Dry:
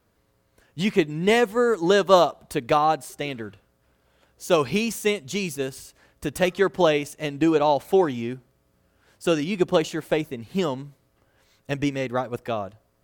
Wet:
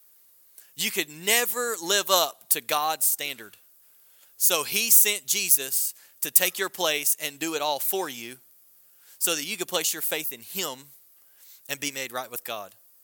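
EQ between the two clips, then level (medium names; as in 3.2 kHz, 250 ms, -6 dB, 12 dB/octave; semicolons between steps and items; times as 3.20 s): tilt EQ +4.5 dB/octave; peaking EQ 15 kHz +13.5 dB 1.3 oct; -5.5 dB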